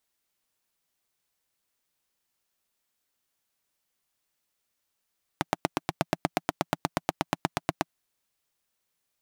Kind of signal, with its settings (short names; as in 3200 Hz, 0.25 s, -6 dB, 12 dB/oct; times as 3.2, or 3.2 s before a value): single-cylinder engine model, steady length 2.47 s, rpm 1000, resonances 170/300/680 Hz